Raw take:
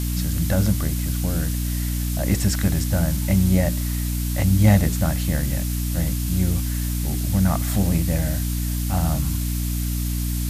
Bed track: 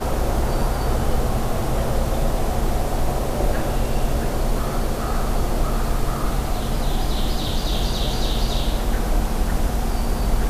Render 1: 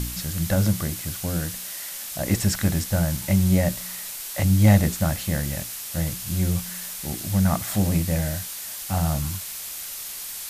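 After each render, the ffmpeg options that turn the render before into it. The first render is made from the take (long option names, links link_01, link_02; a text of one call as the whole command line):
ffmpeg -i in.wav -af "bandreject=frequency=60:width_type=h:width=4,bandreject=frequency=120:width_type=h:width=4,bandreject=frequency=180:width_type=h:width=4,bandreject=frequency=240:width_type=h:width=4,bandreject=frequency=300:width_type=h:width=4" out.wav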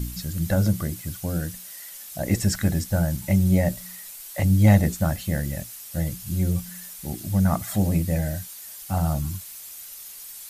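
ffmpeg -i in.wav -af "afftdn=noise_reduction=10:noise_floor=-35" out.wav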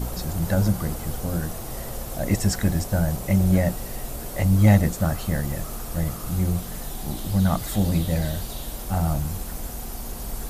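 ffmpeg -i in.wav -i bed.wav -filter_complex "[1:a]volume=-12.5dB[link_01];[0:a][link_01]amix=inputs=2:normalize=0" out.wav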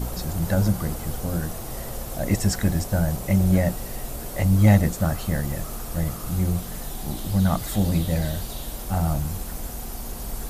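ffmpeg -i in.wav -af anull out.wav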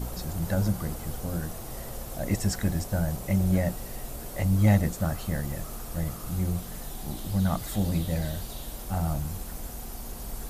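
ffmpeg -i in.wav -af "volume=-5dB" out.wav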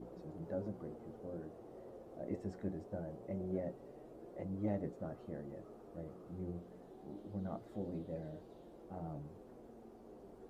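ffmpeg -i in.wav -af "bandpass=frequency=390:width_type=q:width=2.2:csg=0,flanger=delay=5.6:depth=6.3:regen=61:speed=0.23:shape=triangular" out.wav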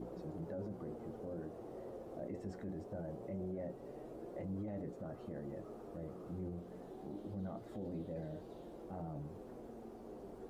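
ffmpeg -i in.wav -filter_complex "[0:a]asplit=2[link_01][link_02];[link_02]acompressor=threshold=-49dB:ratio=6,volume=-2dB[link_03];[link_01][link_03]amix=inputs=2:normalize=0,alimiter=level_in=11.5dB:limit=-24dB:level=0:latency=1:release=19,volume=-11.5dB" out.wav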